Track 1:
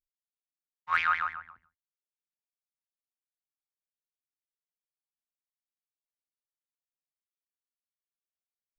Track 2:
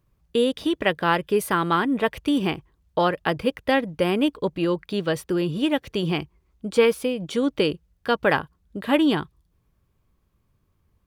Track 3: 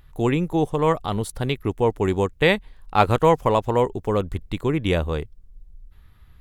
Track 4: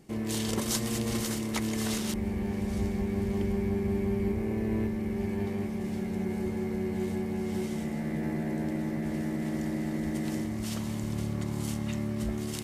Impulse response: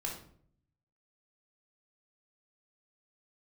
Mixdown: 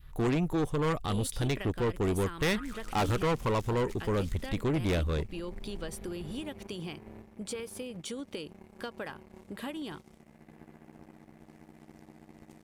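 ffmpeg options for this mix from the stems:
-filter_complex "[0:a]adelay=1500,volume=-7dB[link_01];[1:a]equalizer=frequency=8600:width=0.68:gain=11.5,acompressor=threshold=-26dB:ratio=12,adelay=750,volume=-9dB[link_02];[2:a]volume=0dB,asplit=2[link_03][link_04];[3:a]aeval=exprs='0.158*(cos(1*acos(clip(val(0)/0.158,-1,1)))-cos(1*PI/2))+0.0224*(cos(3*acos(clip(val(0)/0.158,-1,1)))-cos(3*PI/2))+0.0126*(cos(7*acos(clip(val(0)/0.158,-1,1)))-cos(7*PI/2))':channel_layout=same,adelay=2350,volume=-14dB[link_05];[link_04]apad=whole_len=453642[link_06];[link_01][link_06]sidechaincompress=threshold=-24dB:ratio=8:attack=16:release=970[link_07];[link_07][link_02][link_03][link_05]amix=inputs=4:normalize=0,adynamicequalizer=threshold=0.0126:dfrequency=680:dqfactor=0.85:tfrequency=680:tqfactor=0.85:attack=5:release=100:ratio=0.375:range=3.5:mode=cutabove:tftype=bell,asoftclip=type=tanh:threshold=-24.5dB"

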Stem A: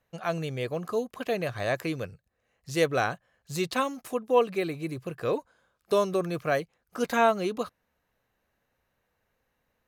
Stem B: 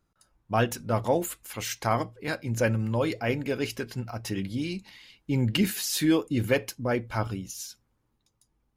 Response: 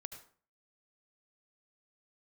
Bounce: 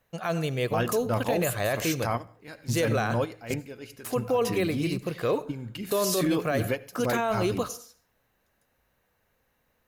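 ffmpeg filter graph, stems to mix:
-filter_complex "[0:a]volume=1dB,asplit=3[link_01][link_02][link_03];[link_01]atrim=end=3.54,asetpts=PTS-STARTPTS,afade=type=out:start_time=3.536:duration=0.004:curve=hsin[link_04];[link_02]atrim=start=3.54:end=4.04,asetpts=PTS-STARTPTS,volume=0[link_05];[link_03]atrim=start=4.04,asetpts=PTS-STARTPTS,afade=type=in:duration=0.004:curve=hsin[link_06];[link_04][link_05][link_06]concat=n=3:v=0:a=1,asplit=3[link_07][link_08][link_09];[link_08]volume=-3.5dB[link_10];[1:a]adelay=200,volume=-1dB,asplit=2[link_11][link_12];[link_12]volume=-15dB[link_13];[link_09]apad=whole_len=395548[link_14];[link_11][link_14]sidechaingate=range=-17dB:threshold=-43dB:ratio=16:detection=peak[link_15];[2:a]atrim=start_sample=2205[link_16];[link_10][link_13]amix=inputs=2:normalize=0[link_17];[link_17][link_16]afir=irnorm=-1:irlink=0[link_18];[link_07][link_15][link_18]amix=inputs=3:normalize=0,highshelf=frequency=12000:gain=8,alimiter=limit=-17dB:level=0:latency=1:release=23"

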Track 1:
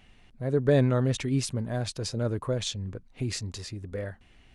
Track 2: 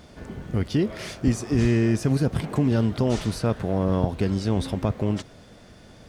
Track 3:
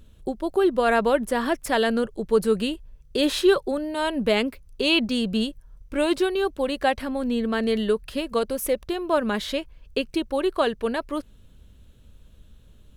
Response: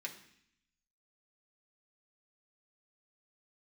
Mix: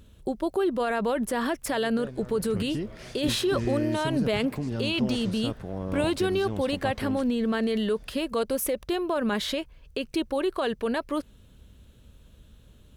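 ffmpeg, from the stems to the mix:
-filter_complex "[0:a]adelay=1300,volume=-20dB[link_01];[1:a]adelay=2000,volume=-10dB[link_02];[2:a]highpass=frequency=50:poles=1,alimiter=limit=-20dB:level=0:latency=1:release=38,volume=1.5dB[link_03];[link_01][link_02][link_03]amix=inputs=3:normalize=0"

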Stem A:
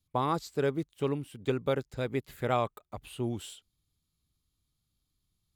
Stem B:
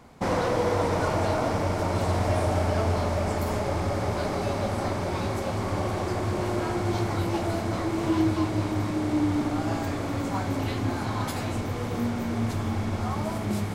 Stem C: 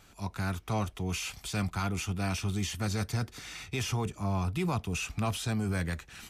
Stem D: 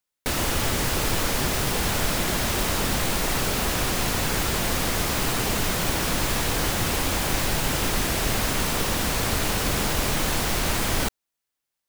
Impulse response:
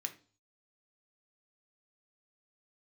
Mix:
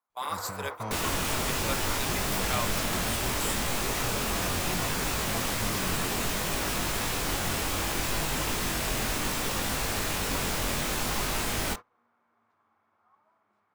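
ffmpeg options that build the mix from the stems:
-filter_complex "[0:a]highpass=860,aemphasis=mode=production:type=75fm,flanger=delay=6.5:depth=1.2:regen=31:speed=0.39:shape=triangular,volume=1dB,asplit=2[link_01][link_02];[link_02]volume=-9.5dB[link_03];[1:a]bandpass=frequency=1200:width_type=q:width=2.4:csg=0,volume=-5dB,asplit=2[link_04][link_05];[link_05]volume=-15.5dB[link_06];[2:a]bandreject=frequency=50:width_type=h:width=6,bandreject=frequency=100:width_type=h:width=6,adelay=100,volume=-7dB[link_07];[3:a]flanger=delay=19.5:depth=2.6:speed=0.66,adelay=650,volume=-3.5dB,asplit=2[link_08][link_09];[link_09]volume=-10dB[link_10];[4:a]atrim=start_sample=2205[link_11];[link_03][link_06][link_10]amix=inputs=3:normalize=0[link_12];[link_12][link_11]afir=irnorm=-1:irlink=0[link_13];[link_01][link_04][link_07][link_08][link_13]amix=inputs=5:normalize=0,agate=range=-25dB:threshold=-35dB:ratio=16:detection=peak"

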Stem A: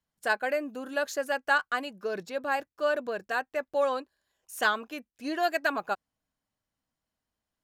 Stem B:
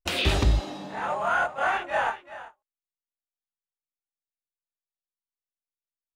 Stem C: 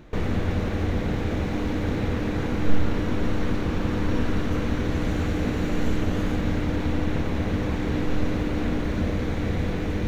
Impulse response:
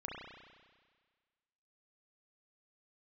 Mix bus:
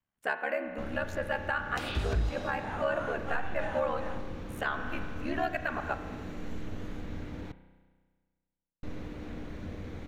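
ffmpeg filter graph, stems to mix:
-filter_complex "[0:a]highshelf=frequency=3400:width_type=q:width=1.5:gain=-9,aeval=exprs='val(0)*sin(2*PI*36*n/s)':channel_layout=same,volume=-2dB,asplit=2[link_01][link_02];[link_02]volume=-5dB[link_03];[1:a]acrossover=split=150[link_04][link_05];[link_05]acompressor=threshold=-32dB:ratio=6[link_06];[link_04][link_06]amix=inputs=2:normalize=0,adelay=1700,volume=-4dB[link_07];[2:a]adelay=650,volume=-17dB,asplit=3[link_08][link_09][link_10];[link_08]atrim=end=7.52,asetpts=PTS-STARTPTS,afade=type=out:start_time=7.516:duration=0.004:curve=hsin[link_11];[link_09]atrim=start=7.52:end=8.83,asetpts=PTS-STARTPTS,volume=0[link_12];[link_10]atrim=start=8.83,asetpts=PTS-STARTPTS,afade=type=in:duration=0.004:curve=hsin[link_13];[link_11][link_12][link_13]concat=n=3:v=0:a=1,asplit=2[link_14][link_15];[link_15]volume=-10dB[link_16];[3:a]atrim=start_sample=2205[link_17];[link_03][link_16]amix=inputs=2:normalize=0[link_18];[link_18][link_17]afir=irnorm=-1:irlink=0[link_19];[link_01][link_07][link_14][link_19]amix=inputs=4:normalize=0,alimiter=limit=-19.5dB:level=0:latency=1:release=249"

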